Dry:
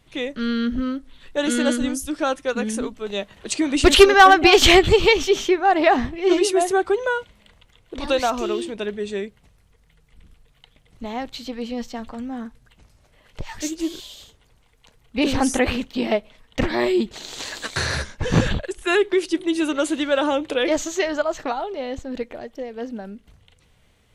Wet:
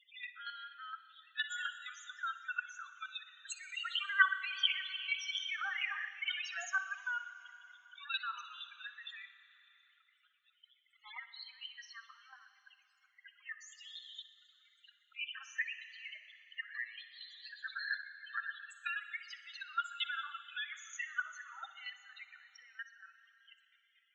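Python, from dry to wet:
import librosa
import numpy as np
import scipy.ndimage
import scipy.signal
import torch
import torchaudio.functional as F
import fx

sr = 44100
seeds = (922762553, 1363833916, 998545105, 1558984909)

y = scipy.signal.sosfilt(scipy.signal.ellip(3, 1.0, 60, [1300.0, 7500.0], 'bandpass', fs=sr, output='sos'), x)
y = fx.leveller(y, sr, passes=2, at=(5.14, 6.95))
y = fx.level_steps(y, sr, step_db=15)
y = fx.spec_topn(y, sr, count=8)
y = fx.chopper(y, sr, hz=4.3, depth_pct=65, duty_pct=15)
y = fx.echo_feedback(y, sr, ms=61, feedback_pct=54, wet_db=-15.5)
y = fx.rev_schroeder(y, sr, rt60_s=2.2, comb_ms=33, drr_db=13.5)
y = fx.band_squash(y, sr, depth_pct=40)
y = F.gain(torch.from_numpy(y), 3.0).numpy()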